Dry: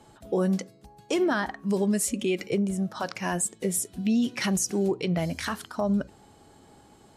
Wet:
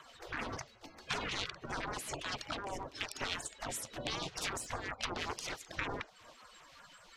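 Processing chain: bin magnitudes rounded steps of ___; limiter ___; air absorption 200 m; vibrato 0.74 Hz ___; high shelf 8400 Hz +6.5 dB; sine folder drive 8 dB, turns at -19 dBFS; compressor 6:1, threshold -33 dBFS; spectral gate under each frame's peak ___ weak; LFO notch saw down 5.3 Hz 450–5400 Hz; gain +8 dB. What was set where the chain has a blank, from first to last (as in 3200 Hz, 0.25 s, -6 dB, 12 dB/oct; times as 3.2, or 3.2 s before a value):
30 dB, -19 dBFS, 6.3 cents, -15 dB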